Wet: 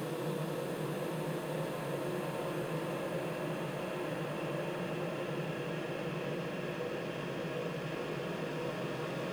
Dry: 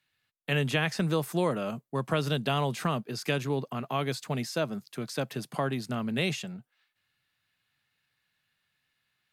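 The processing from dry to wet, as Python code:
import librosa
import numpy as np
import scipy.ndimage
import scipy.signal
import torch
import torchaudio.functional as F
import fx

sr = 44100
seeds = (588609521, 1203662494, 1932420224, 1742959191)

p1 = np.where(x < 0.0, 10.0 ** (-7.0 / 20.0) * x, x)
p2 = fx.highpass(p1, sr, hz=260.0, slope=6)
p3 = fx.echo_opening(p2, sr, ms=353, hz=400, octaves=2, feedback_pct=70, wet_db=0)
p4 = fx.sample_hold(p3, sr, seeds[0], rate_hz=1900.0, jitter_pct=0)
p5 = p3 + F.gain(torch.from_numpy(p4), -10.0).numpy()
p6 = fx.paulstretch(p5, sr, seeds[1], factor=12.0, window_s=1.0, from_s=1.23)
y = F.gain(torch.from_numpy(p6), -8.0).numpy()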